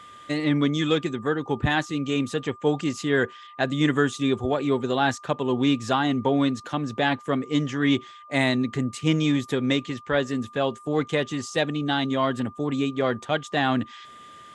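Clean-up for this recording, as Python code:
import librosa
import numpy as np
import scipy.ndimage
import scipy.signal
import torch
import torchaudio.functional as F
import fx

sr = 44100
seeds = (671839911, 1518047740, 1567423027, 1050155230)

y = fx.notch(x, sr, hz=1200.0, q=30.0)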